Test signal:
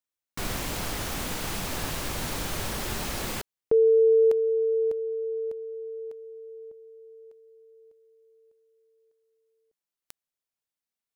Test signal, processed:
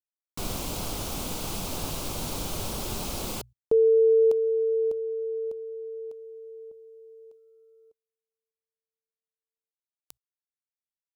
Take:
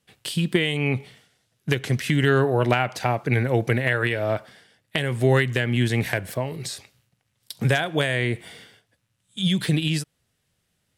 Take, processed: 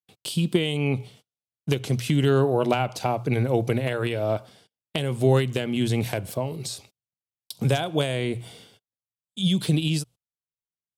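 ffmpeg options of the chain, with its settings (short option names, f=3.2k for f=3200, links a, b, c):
-af "bandreject=f=60:t=h:w=6,bandreject=f=120:t=h:w=6,agate=range=-34dB:threshold=-54dB:ratio=16:release=84:detection=rms,equalizer=f=1.8k:t=o:w=0.6:g=-14.5"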